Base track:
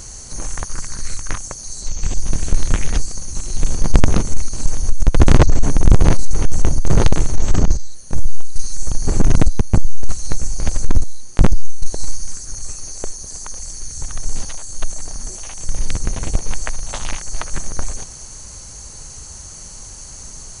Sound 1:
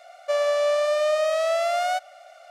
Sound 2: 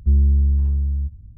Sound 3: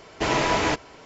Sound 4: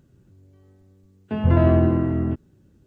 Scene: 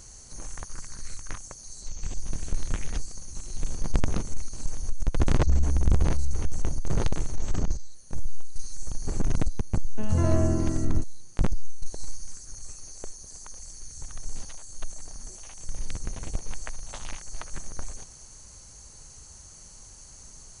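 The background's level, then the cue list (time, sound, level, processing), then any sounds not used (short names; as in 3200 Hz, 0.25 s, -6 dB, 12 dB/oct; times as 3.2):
base track -12.5 dB
5.4 add 2 -10.5 dB
8.67 add 4 -8 dB + bell 73 Hz +3 dB
not used: 1, 3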